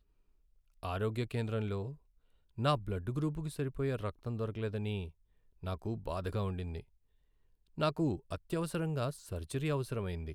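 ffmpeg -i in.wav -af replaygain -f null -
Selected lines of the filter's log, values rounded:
track_gain = +18.2 dB
track_peak = 0.102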